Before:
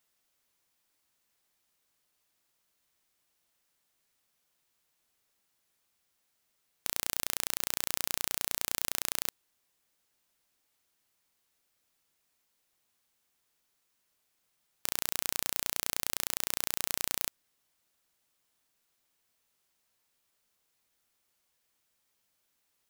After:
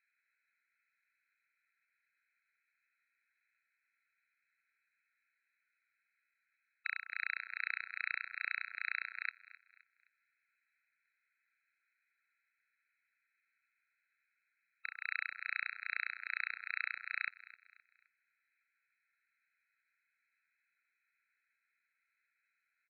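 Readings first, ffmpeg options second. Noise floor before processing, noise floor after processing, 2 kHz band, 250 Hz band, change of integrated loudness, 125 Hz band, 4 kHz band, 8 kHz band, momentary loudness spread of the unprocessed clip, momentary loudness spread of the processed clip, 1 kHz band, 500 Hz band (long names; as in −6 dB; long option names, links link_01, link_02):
−77 dBFS, −84 dBFS, +5.5 dB, below −40 dB, −7.5 dB, below −40 dB, −16.0 dB, below −40 dB, 3 LU, 5 LU, −4.5 dB, below −40 dB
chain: -filter_complex "[0:a]tiltshelf=frequency=720:gain=-4,aeval=exprs='val(0)*sin(2*PI*1100*n/s)':channel_layout=same,aresample=8000,aresample=44100,asplit=2[link_01][link_02];[link_02]aecho=0:1:260|520|780:0.126|0.0478|0.0182[link_03];[link_01][link_03]amix=inputs=2:normalize=0,afftfilt=real='re*eq(mod(floor(b*sr/1024/1300),2),1)':imag='im*eq(mod(floor(b*sr/1024/1300),2),1)':win_size=1024:overlap=0.75,volume=6.5dB"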